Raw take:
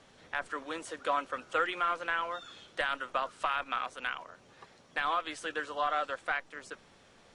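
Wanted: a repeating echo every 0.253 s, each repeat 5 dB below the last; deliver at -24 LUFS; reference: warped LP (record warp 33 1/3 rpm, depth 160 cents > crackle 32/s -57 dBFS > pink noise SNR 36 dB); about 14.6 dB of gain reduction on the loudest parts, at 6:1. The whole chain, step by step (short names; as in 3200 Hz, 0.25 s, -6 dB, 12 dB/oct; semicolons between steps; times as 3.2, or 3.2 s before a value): compressor 6:1, threshold -42 dBFS; feedback echo 0.253 s, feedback 56%, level -5 dB; record warp 33 1/3 rpm, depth 160 cents; crackle 32/s -57 dBFS; pink noise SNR 36 dB; gain +21 dB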